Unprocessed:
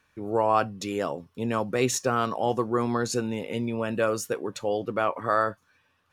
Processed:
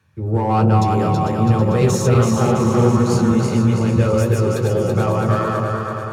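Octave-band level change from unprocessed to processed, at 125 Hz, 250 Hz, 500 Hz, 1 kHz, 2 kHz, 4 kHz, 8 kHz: +21.0, +13.0, +8.0, +6.5, +3.5, +4.5, +4.5 dB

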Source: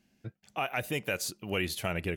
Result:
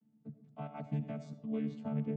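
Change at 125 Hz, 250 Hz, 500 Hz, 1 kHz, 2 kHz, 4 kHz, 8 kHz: -0.5 dB, +1.5 dB, -9.0 dB, -12.5 dB, -25.0 dB, under -25 dB, under -30 dB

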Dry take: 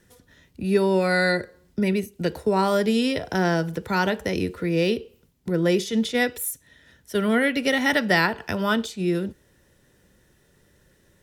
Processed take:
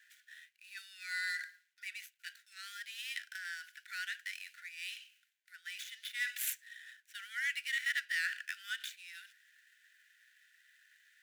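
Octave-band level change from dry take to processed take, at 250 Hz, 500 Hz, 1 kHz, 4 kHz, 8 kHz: under -40 dB, under -40 dB, -27.0 dB, -11.5 dB, -9.5 dB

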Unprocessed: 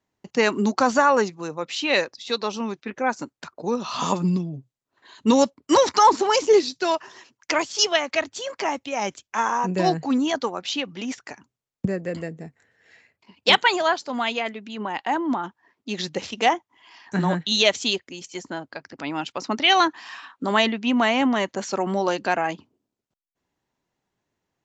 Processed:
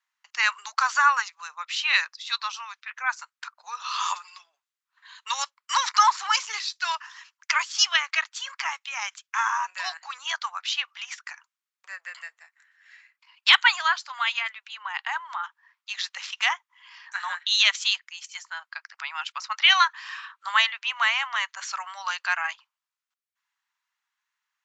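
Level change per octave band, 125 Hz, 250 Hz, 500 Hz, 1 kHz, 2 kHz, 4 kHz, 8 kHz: under -40 dB, under -40 dB, -29.0 dB, -3.5 dB, +2.5 dB, +1.0 dB, n/a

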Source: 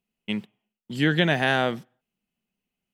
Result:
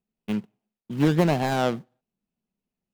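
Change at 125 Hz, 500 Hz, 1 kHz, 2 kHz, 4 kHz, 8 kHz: +2.0, +1.0, +0.5, -9.5, -8.0, +5.0 dB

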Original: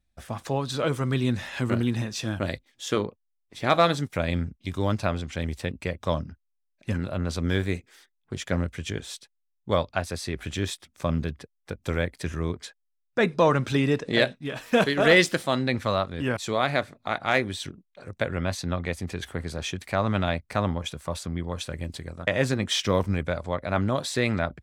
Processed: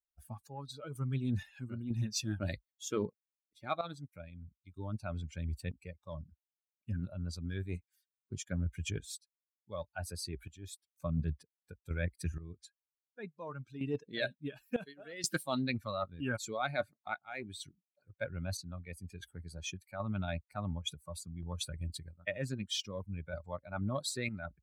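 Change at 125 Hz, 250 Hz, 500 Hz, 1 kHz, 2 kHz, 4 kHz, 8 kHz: -10.0, -12.5, -15.5, -15.0, -14.5, -12.0, -6.0 dB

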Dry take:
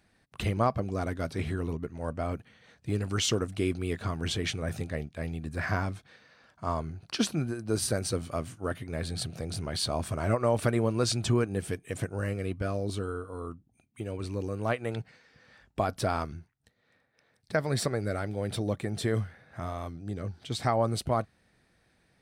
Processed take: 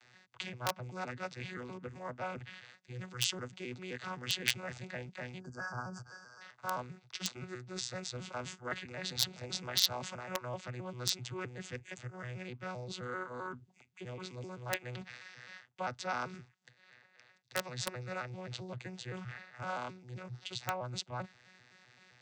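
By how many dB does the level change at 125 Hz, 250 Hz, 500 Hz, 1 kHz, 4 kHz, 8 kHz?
-13.0, -13.5, -12.0, -7.0, -1.0, -4.0 dB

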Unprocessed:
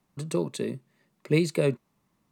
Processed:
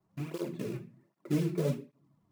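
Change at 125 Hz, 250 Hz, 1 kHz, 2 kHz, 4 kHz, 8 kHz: -4.0, -4.5, -6.5, -12.5, -11.0, -10.5 dB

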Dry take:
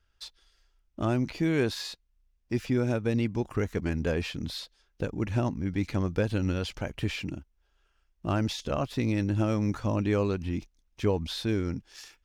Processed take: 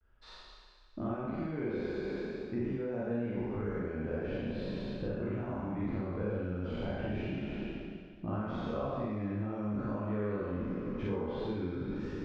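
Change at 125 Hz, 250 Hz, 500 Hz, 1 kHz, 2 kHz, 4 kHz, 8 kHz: -8.5 dB, -5.5 dB, -4.5 dB, -5.0 dB, -8.0 dB, -15.0 dB, under -25 dB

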